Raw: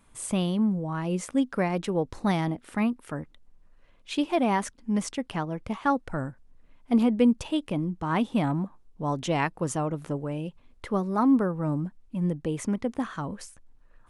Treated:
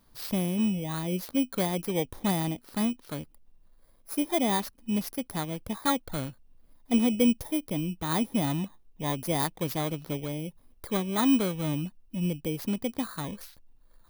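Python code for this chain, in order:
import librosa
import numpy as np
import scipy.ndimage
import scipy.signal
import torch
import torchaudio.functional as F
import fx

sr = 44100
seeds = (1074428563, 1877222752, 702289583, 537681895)

y = fx.bit_reversed(x, sr, seeds[0], block=16)
y = F.gain(torch.from_numpy(y), -2.0).numpy()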